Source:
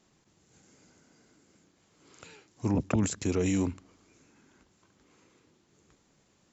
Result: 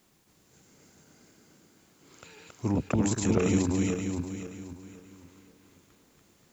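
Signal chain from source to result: backward echo that repeats 263 ms, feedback 55%, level -1 dB; added noise white -71 dBFS

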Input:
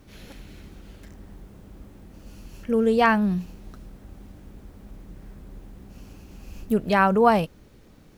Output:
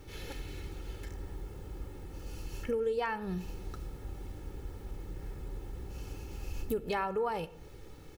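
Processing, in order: comb 2.3 ms, depth 67%; compression 6:1, threshold -31 dBFS, peak gain reduction 18 dB; on a send: reverberation RT60 0.85 s, pre-delay 3 ms, DRR 15 dB

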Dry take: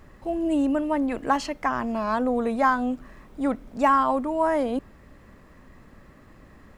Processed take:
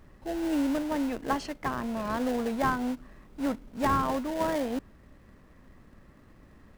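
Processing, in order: band-stop 7.1 kHz, Q 17; in parallel at -6.5 dB: sample-rate reducer 1.2 kHz, jitter 20%; on the sum: trim -7 dB

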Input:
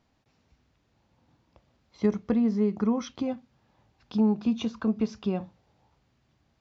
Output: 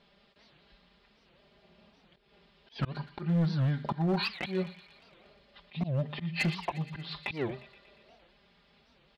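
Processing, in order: low-pass 5.3 kHz 12 dB/octave; tone controls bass -9 dB, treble +12 dB; comb 3.6 ms, depth 83%; dynamic bell 1.8 kHz, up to +5 dB, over -52 dBFS, Q 0.88; in parallel at -1 dB: compression 12:1, threshold -38 dBFS, peak gain reduction 17.5 dB; on the sum: slow attack 138 ms; hard clipper -23.5 dBFS, distortion -15 dB; tape speed -28%; feedback echo behind a high-pass 118 ms, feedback 69%, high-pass 1.5 kHz, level -13.5 dB; warped record 78 rpm, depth 250 cents

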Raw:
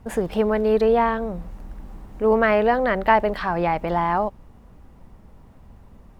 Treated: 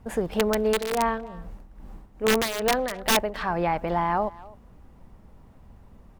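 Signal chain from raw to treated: integer overflow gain 10.5 dB; 0.66–3.35 s: tremolo 2.4 Hz, depth 70%; speakerphone echo 260 ms, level -20 dB; trim -3 dB

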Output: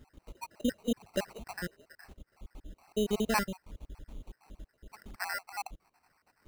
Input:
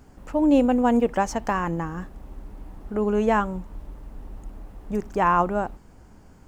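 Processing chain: random holes in the spectrogram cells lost 72%; high-order bell 3.3 kHz +10 dB 1.2 oct; sample-rate reducer 3.4 kHz, jitter 0%; trim -5 dB

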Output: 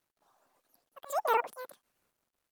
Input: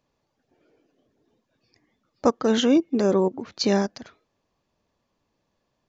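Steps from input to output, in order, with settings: pitch shift switched off and on +1.5 st, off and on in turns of 214 ms; tone controls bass 0 dB, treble +9 dB; slow attack 799 ms; rotary cabinet horn 0.6 Hz; word length cut 12-bit, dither none; speed mistake 33 rpm record played at 78 rpm; trim -3.5 dB

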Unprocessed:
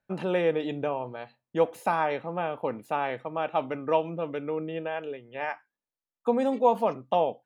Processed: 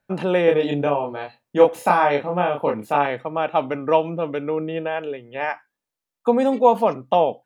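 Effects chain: 0.45–3.06 s: doubling 28 ms -2 dB; trim +7 dB

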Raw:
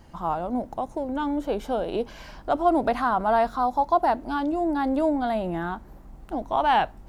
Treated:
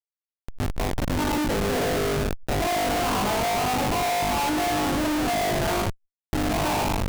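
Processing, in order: fade-in on the opening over 1.63 s; gate with hold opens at -35 dBFS; high-pass 460 Hz 6 dB/octave; compression 5:1, threshold -24 dBFS, peak gain reduction 7.5 dB; peak limiter -21.5 dBFS, peak gain reduction 6 dB; brick-wall FIR low-pass 1.7 kHz; flutter echo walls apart 3.4 m, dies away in 1 s; gated-style reverb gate 430 ms falling, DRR 5 dB; Schmitt trigger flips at -26 dBFS; swell ahead of each attack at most 130 dB/s

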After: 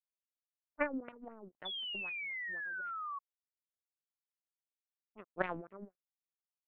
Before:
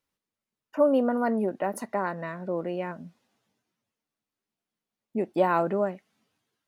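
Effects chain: power-law waveshaper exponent 3; LFO low-pass sine 3.9 Hz 250–2500 Hz; painted sound fall, 1.65–3.19 s, 1.1–3.5 kHz -34 dBFS; trim -7 dB

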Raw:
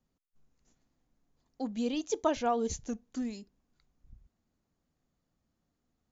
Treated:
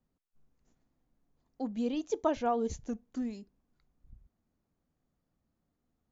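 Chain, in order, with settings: treble shelf 2.6 kHz -9.5 dB

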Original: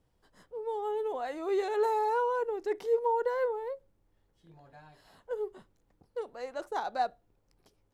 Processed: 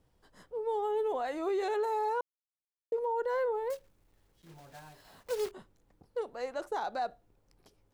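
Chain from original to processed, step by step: 3.70–5.53 s: block-companded coder 3-bit; peak limiter -28 dBFS, peak gain reduction 9 dB; 2.21–2.92 s: mute; trim +2.5 dB

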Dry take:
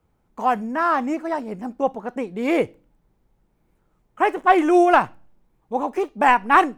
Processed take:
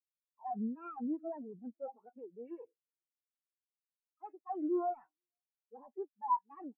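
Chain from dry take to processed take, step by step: saturation -4 dBFS, distortion -24 dB; reverse; compression 5:1, threshold -28 dBFS, peak gain reduction 15.5 dB; reverse; Chebyshev shaper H 4 -9 dB, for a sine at -16.5 dBFS; pre-emphasis filter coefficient 0.8; overdrive pedal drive 31 dB, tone 3 kHz, clips at -24.5 dBFS; on a send: delay 482 ms -17.5 dB; on the sum: spectral contrast expander 4:1; trim +2.5 dB

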